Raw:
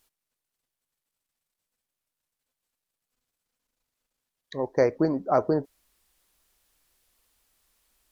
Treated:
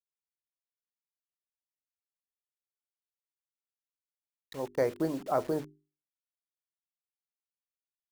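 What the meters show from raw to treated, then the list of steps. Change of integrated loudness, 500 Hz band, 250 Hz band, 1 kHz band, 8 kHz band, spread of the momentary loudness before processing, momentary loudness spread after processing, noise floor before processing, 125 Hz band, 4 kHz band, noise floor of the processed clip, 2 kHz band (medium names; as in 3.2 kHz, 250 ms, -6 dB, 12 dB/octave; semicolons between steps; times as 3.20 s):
-6.5 dB, -6.5 dB, -7.0 dB, -6.5 dB, no reading, 9 LU, 14 LU, under -85 dBFS, -7.5 dB, -3.0 dB, under -85 dBFS, -6.0 dB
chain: bit crusher 7-bit; hum notches 50/100/150/200/250/300/350/400 Hz; trim -6.5 dB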